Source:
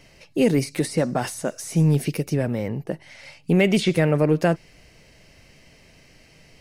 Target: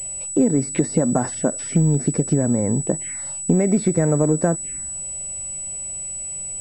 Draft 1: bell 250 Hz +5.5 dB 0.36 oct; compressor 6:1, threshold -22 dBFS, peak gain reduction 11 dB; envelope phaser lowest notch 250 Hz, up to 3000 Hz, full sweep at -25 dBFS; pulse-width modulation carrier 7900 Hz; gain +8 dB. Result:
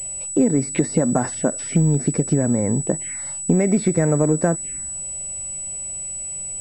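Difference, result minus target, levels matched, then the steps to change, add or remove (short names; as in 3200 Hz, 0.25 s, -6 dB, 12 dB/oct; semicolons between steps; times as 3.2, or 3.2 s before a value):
2000 Hz band +2.5 dB
add after compressor: dynamic EQ 2300 Hz, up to -4 dB, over -45 dBFS, Q 1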